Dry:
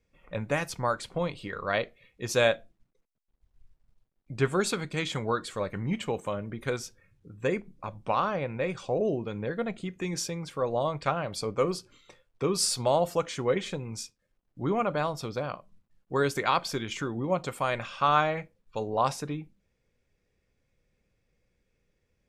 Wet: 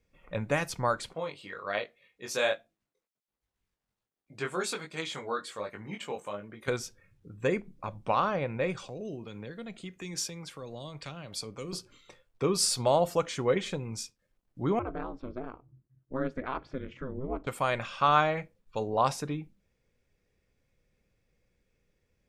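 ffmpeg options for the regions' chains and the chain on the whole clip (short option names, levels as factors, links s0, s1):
-filter_complex "[0:a]asettb=1/sr,asplit=3[s0][s1][s2];[s0]atrim=end=1.134[s3];[s1]atrim=start=1.13:end=6.68,asetpts=PTS-STARTPTS,afade=t=in:d=0.004:c=qsin,afade=t=out:st=5.546:d=0.004:c=qsin,highpass=f=450:p=1,flanger=delay=18.5:depth=3:speed=1.3[s4];[s2]atrim=start=6.676[s5];[s3][s4]acrossfade=d=0.004:c1=hsin:c2=qsin[s6];[s6][s5]acrossfade=d=0.004:c1=qsin:c2=hsin,asettb=1/sr,asplit=3[s7][s8][s9];[s7]atrim=end=8.884[s10];[s8]atrim=start=8.88:end=11.73,asetpts=PTS-STARTPTS,afade=t=in:d=0.004:c=qsin,afade=t=out:st=2.846:d=0.004:c=qsin,lowshelf=f=430:g=-8.5,acrossover=split=320|3000[s11][s12][s13];[s12]acompressor=threshold=0.00501:ratio=6:attack=3.2:release=140:knee=2.83:detection=peak[s14];[s11][s14][s13]amix=inputs=3:normalize=0[s15];[s9]atrim=start=11.726[s16];[s10][s15]acrossfade=d=0.004:c1=hsin:c2=qsin[s17];[s17][s16]acrossfade=d=0.004:c1=qsin:c2=hsin,asettb=1/sr,asplit=3[s18][s19][s20];[s18]atrim=end=14.794[s21];[s19]atrim=start=14.79:end=17.47,asetpts=PTS-STARTPTS,afade=t=in:d=0.004:c=qsin,afade=t=out:st=2.676:d=0.004:c=qsin,equalizer=f=770:t=o:w=1.1:g=-9.5,aeval=exprs='val(0)*sin(2*PI*130*n/s)':c=same,lowpass=1300[s22];[s20]atrim=start=17.466[s23];[s21][s22]acrossfade=d=0.004:c1=hsin:c2=qsin[s24];[s24][s23]acrossfade=d=0.004:c1=qsin:c2=hsin"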